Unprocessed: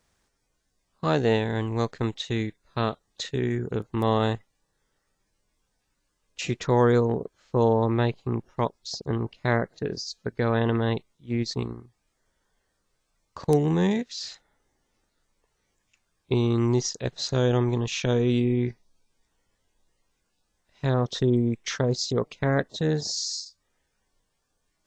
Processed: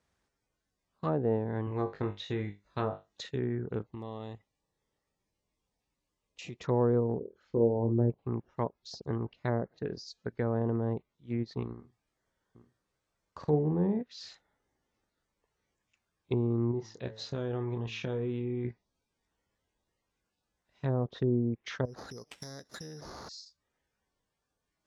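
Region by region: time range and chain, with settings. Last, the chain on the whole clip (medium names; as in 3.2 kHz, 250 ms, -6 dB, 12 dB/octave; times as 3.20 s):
1.65–3.21 s: peaking EQ 6.3 kHz +3.5 dB 0.62 oct + flutter echo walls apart 3.4 m, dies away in 0.22 s
3.85–6.64 s: peaking EQ 1.5 kHz -12 dB 0.35 oct + compression 3:1, threshold -34 dBFS
7.19–8.10 s: resonances exaggerated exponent 2 + flutter echo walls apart 4.4 m, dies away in 0.21 s
11.73–14.01 s: doubling 46 ms -10.5 dB + delay 819 ms -10 dB
16.71–18.65 s: de-hum 109.6 Hz, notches 19 + compression 3:1, threshold -24 dBFS + doubling 27 ms -10 dB
21.85–23.29 s: compression 8:1, threshold -36 dBFS + careless resampling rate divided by 8×, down none, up zero stuff
whole clip: low-pass that closes with the level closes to 790 Hz, closed at -19.5 dBFS; high-pass 44 Hz; treble shelf 4.8 kHz -8 dB; trim -6 dB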